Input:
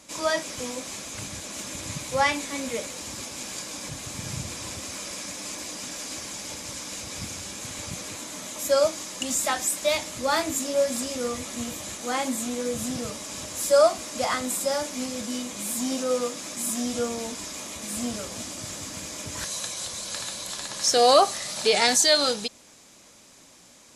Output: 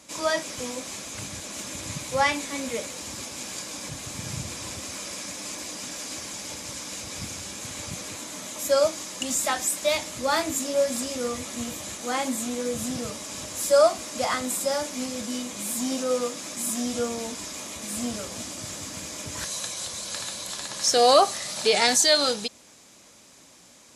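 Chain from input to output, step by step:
high-pass filter 44 Hz

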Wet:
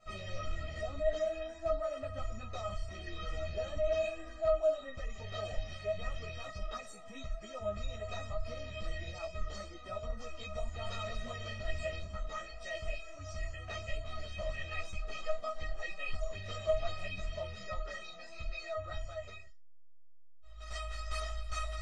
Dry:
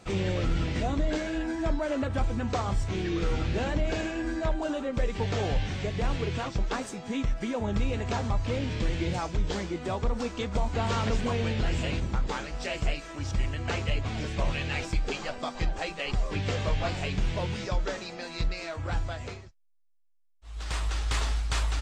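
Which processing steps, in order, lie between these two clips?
high-shelf EQ 5,700 Hz −10 dB
tuned comb filter 630 Hz, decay 0.24 s, harmonics all, mix 100%
string-ensemble chorus
level +14 dB

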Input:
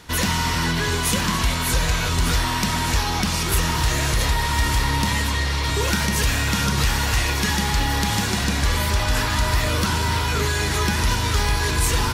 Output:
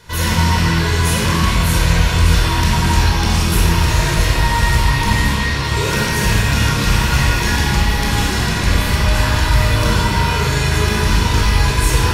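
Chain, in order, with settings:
loose part that buzzes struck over −19 dBFS, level −19 dBFS
rectangular room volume 1,800 cubic metres, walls mixed, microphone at 5 metres
level −4 dB

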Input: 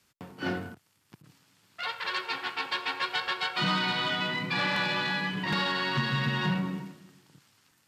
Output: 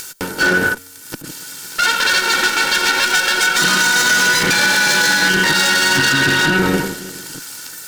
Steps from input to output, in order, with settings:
lower of the sound and its delayed copy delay 2.2 ms
bass and treble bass −11 dB, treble +14 dB
hollow resonant body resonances 210/1,500 Hz, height 17 dB, ringing for 35 ms
upward compression, threshold −45 dBFS
parametric band 420 Hz −3 dB 0.39 octaves
tuned comb filter 92 Hz, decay 1.1 s, harmonics odd, mix 30%
downward compressor, threshold −29 dBFS, peak gain reduction 7.5 dB
boost into a limiter +28 dB
level −4 dB

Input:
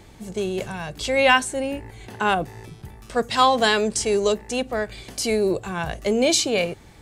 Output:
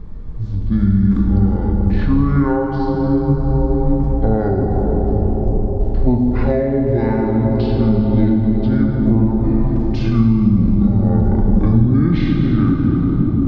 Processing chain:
parametric band 5,100 Hz −5 dB 0.67 octaves
dense smooth reverb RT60 3.4 s, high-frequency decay 0.35×, DRR −2 dB
downward compressor 6 to 1, threshold −19 dBFS, peak gain reduction 10.5 dB
spectral tilt −4.5 dB per octave
mains-hum notches 60/120/180/240 Hz
change of speed 0.521×
level +3 dB

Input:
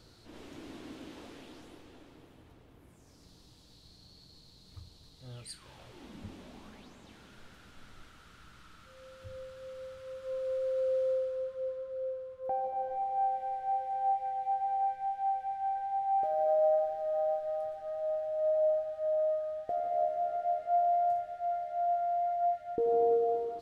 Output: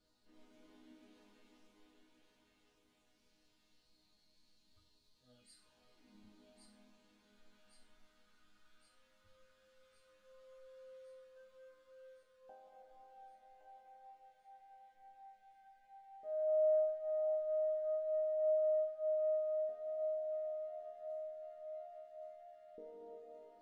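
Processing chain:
0:11.36–0:12.23: leveller curve on the samples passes 1
resonators tuned to a chord G#3 minor, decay 0.45 s
on a send: feedback echo with a high-pass in the loop 1,116 ms, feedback 65%, high-pass 1,200 Hz, level −3 dB
on the sum: level +1.5 dB

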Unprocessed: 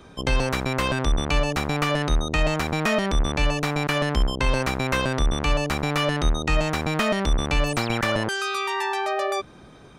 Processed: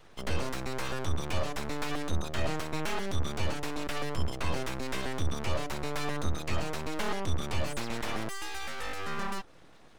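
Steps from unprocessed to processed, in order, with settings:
dynamic equaliser 2,400 Hz, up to −5 dB, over −38 dBFS, Q 0.91
flanger 0.56 Hz, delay 4.4 ms, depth 2.2 ms, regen −38%
full-wave rectification
level −3 dB

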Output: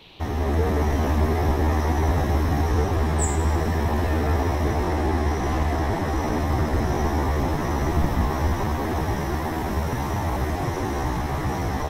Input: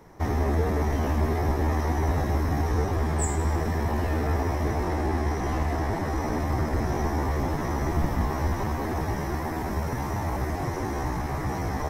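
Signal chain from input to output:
automatic gain control gain up to 5 dB
noise in a band 2,300–4,100 Hz −49 dBFS
level −1.5 dB

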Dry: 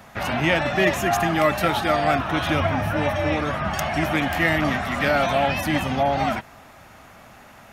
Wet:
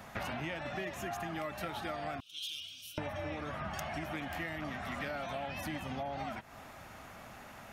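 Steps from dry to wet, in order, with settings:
0:02.20–0:02.98: elliptic high-pass filter 3,000 Hz, stop band 40 dB
downward compressor 12 to 1, threshold −32 dBFS, peak gain reduction 18 dB
level −4 dB

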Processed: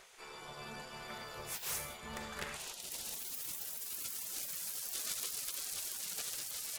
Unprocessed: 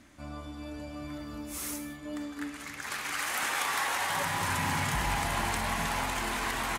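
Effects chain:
dynamic equaliser 130 Hz, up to −4 dB, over −55 dBFS, Q 3.5
harmonic generator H 3 −13 dB, 6 −14 dB, 7 −11 dB, 8 −27 dB, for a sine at −17 dBFS
gate on every frequency bin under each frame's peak −15 dB weak

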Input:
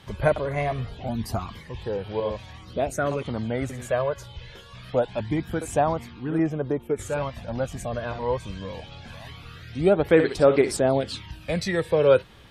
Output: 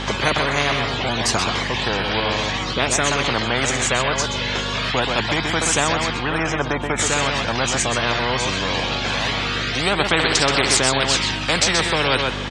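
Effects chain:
elliptic band-pass filter 100–7,200 Hz, stop band 40 dB
mains hum 50 Hz, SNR 15 dB
on a send: single-tap delay 128 ms −11 dB
on the sum: every bin compressed towards the loudest bin 4 to 1
level +3 dB

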